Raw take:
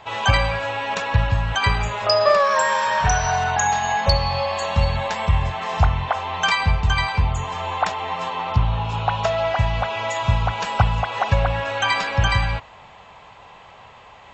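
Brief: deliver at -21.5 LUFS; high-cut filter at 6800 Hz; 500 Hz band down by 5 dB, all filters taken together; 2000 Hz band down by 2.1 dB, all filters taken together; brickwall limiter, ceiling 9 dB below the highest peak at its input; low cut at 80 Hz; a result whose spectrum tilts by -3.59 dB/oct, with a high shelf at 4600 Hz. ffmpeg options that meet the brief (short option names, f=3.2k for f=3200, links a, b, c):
-af "highpass=80,lowpass=6.8k,equalizer=f=500:t=o:g=-6.5,equalizer=f=2k:t=o:g=-3.5,highshelf=f=4.6k:g=6.5,volume=3dB,alimiter=limit=-10.5dB:level=0:latency=1"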